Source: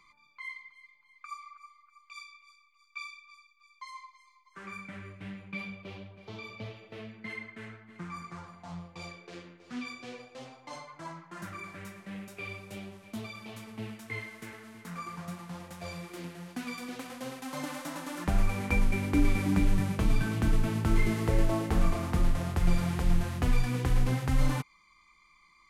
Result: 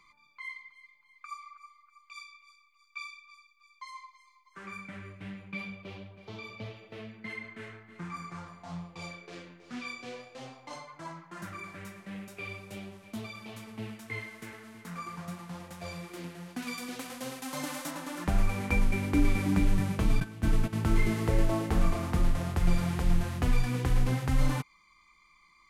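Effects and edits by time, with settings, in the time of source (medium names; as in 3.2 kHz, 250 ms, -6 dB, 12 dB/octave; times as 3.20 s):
7.41–10.74 s: doubling 30 ms -4.5 dB
16.62–17.91 s: treble shelf 3.8 kHz +6.5 dB
20.20–20.73 s: gate -28 dBFS, range -13 dB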